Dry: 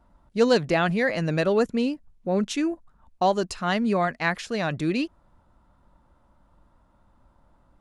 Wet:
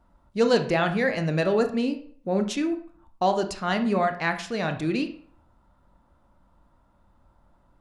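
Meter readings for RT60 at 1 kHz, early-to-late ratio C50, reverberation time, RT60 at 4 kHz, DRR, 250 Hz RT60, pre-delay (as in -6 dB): 0.50 s, 11.0 dB, 0.50 s, 0.35 s, 7.0 dB, 0.50 s, 23 ms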